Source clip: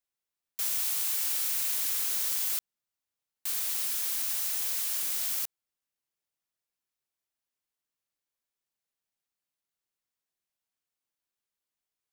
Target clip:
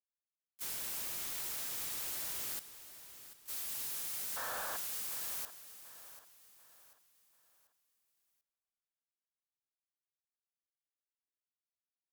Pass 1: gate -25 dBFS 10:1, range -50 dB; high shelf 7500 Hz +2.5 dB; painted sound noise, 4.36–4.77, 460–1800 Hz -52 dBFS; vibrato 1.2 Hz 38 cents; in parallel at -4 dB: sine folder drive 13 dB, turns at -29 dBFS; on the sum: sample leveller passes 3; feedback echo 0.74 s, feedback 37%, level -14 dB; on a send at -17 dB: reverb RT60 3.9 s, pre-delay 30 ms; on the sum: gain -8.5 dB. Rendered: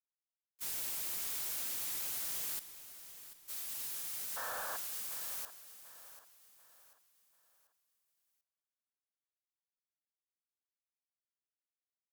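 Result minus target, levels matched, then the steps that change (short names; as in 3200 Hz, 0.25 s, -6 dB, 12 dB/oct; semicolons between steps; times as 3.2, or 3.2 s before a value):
sine folder: distortion -12 dB
change: sine folder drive 19 dB, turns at -29 dBFS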